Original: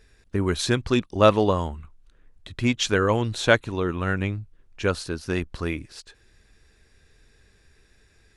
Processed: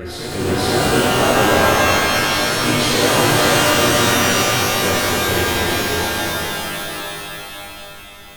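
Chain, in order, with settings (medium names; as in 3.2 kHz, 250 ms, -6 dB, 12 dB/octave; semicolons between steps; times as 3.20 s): graphic EQ with 31 bands 100 Hz -6 dB, 200 Hz -5 dB, 6.3 kHz -8 dB; peak limiter -14 dBFS, peak gain reduction 11 dB; reverse echo 489 ms -7 dB; harmony voices +4 st -2 dB; pitch-shifted reverb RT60 3.7 s, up +12 st, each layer -2 dB, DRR -9.5 dB; trim -3.5 dB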